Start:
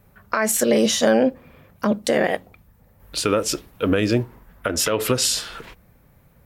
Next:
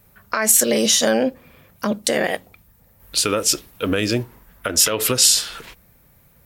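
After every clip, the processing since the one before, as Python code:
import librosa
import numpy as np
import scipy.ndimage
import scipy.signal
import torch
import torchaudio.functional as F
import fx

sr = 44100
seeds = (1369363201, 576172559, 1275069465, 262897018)

y = fx.high_shelf(x, sr, hz=2800.0, db=11.0)
y = y * librosa.db_to_amplitude(-2.0)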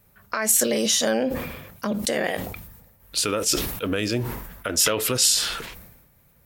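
y = fx.sustainer(x, sr, db_per_s=51.0)
y = y * librosa.db_to_amplitude(-5.0)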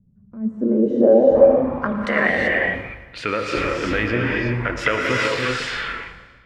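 y = fx.filter_sweep_lowpass(x, sr, from_hz=200.0, to_hz=2000.0, start_s=0.35, end_s=2.03, q=3.5)
y = fx.echo_feedback(y, sr, ms=114, feedback_pct=59, wet_db=-15.5)
y = fx.rev_gated(y, sr, seeds[0], gate_ms=410, shape='rising', drr_db=-1.5)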